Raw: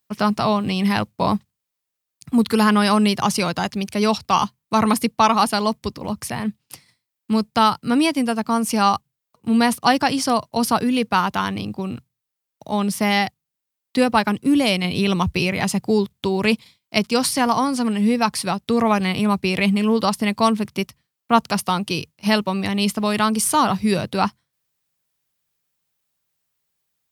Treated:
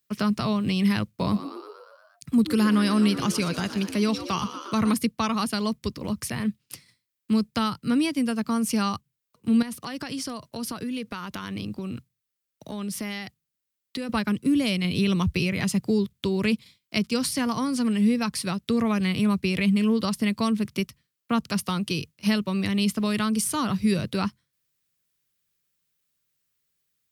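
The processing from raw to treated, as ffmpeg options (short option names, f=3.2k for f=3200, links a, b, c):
-filter_complex "[0:a]asettb=1/sr,asplit=3[a][b][c];[a]atrim=end=1.084[d];[b]atrim=start=1.08:end=4.92,asetpts=PTS-STARTPTS,afade=t=in:d=0.004:c=qsin,afade=t=out:st=3.836:d=0.004:c=qsin,asplit=8[e][f][g][h][i][j][k][l];[f]adelay=118,afreqshift=71,volume=-13dB[m];[g]adelay=236,afreqshift=142,volume=-17.2dB[n];[h]adelay=354,afreqshift=213,volume=-21.3dB[o];[i]adelay=472,afreqshift=284,volume=-25.5dB[p];[j]adelay=590,afreqshift=355,volume=-29.6dB[q];[k]adelay=708,afreqshift=426,volume=-33.8dB[r];[l]adelay=826,afreqshift=497,volume=-37.9dB[s];[e][m][n][o][p][q][r][s]amix=inputs=8:normalize=0,atrim=end_sample=169344[t];[c]atrim=start=4.916[u];[d][t]acrossfade=d=0.004:c1=hsin:c2=qsin[v];[v][u]acrossfade=d=0.004:c1=qsin:c2=hsin,asettb=1/sr,asplit=3[w][x][y];[w]atrim=end=9.624[z];[x]atrim=start=9.62:end=14.09,asetpts=PTS-STARTPTS,afade=t=in:d=0.004:c=qsin,afade=t=out:st=4.466:d=0.004:c=qsin,acompressor=threshold=-27dB:ratio=5:attack=3.2:release=140:knee=1:detection=peak[aa];[y]atrim=start=14.086[ab];[z][aa]acrossfade=d=0.004:c1=hsin:c2=qsin[ac];[ac][ab]acrossfade=d=0.004:c1=qsin:c2=hsin,equalizer=f=800:w=2:g=-10.5,acrossover=split=240[ad][ae];[ae]acompressor=threshold=-28dB:ratio=2[af];[ad][af]amix=inputs=2:normalize=0,volume=-1dB"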